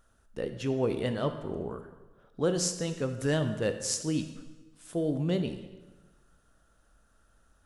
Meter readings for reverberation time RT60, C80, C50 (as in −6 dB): 1.2 s, 11.0 dB, 9.5 dB